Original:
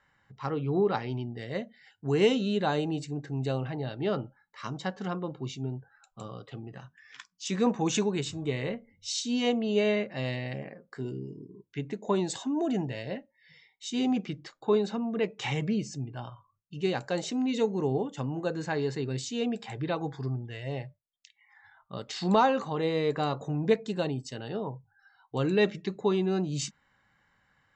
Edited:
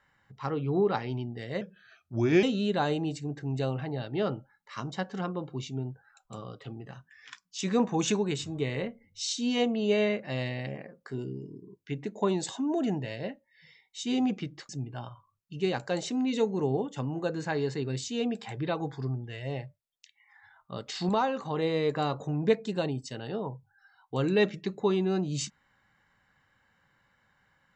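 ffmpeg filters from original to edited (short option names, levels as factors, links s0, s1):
-filter_complex "[0:a]asplit=6[s0][s1][s2][s3][s4][s5];[s0]atrim=end=1.614[s6];[s1]atrim=start=1.61:end=2.3,asetpts=PTS-STARTPTS,asetrate=37044,aresample=44100[s7];[s2]atrim=start=2.296:end=14.562[s8];[s3]atrim=start=15.898:end=22.302[s9];[s4]atrim=start=22.298:end=22.662,asetpts=PTS-STARTPTS,volume=0.596[s10];[s5]atrim=start=22.658[s11];[s6][s7]acrossfade=d=0.004:c1=hsin:c2=hsin[s12];[s12][s8]acrossfade=d=0.004:c1=hsin:c2=hsin[s13];[s13][s9]acrossfade=d=0.004:c1=hsin:c2=hsin[s14];[s14][s10]acrossfade=d=0.004:c1=hsin:c2=hsin[s15];[s15][s11]acrossfade=d=0.004:c1=hsin:c2=hsin"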